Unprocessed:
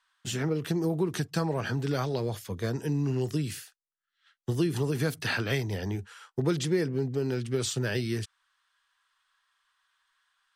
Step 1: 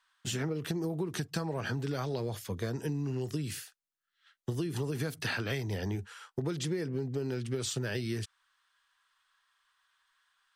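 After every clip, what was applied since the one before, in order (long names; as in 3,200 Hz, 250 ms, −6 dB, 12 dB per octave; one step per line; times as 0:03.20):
downward compressor, threshold −30 dBFS, peak gain reduction 9 dB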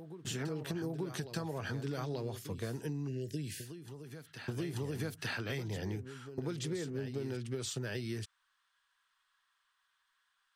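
backwards echo 884 ms −10 dB
time-frequency box erased 0:03.08–0:03.65, 650–1,500 Hz
level −4.5 dB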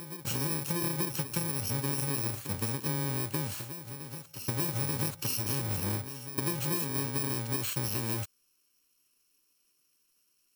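samples in bit-reversed order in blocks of 64 samples
level +6 dB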